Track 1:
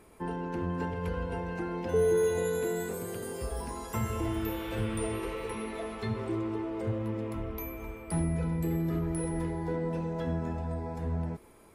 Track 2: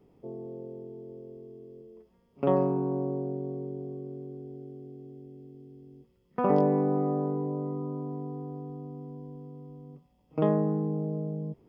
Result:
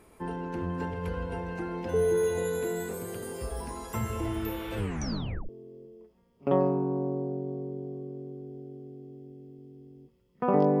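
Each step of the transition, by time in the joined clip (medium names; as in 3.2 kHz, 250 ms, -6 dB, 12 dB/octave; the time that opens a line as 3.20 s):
track 1
4.77 s: tape stop 0.72 s
5.49 s: go over to track 2 from 1.45 s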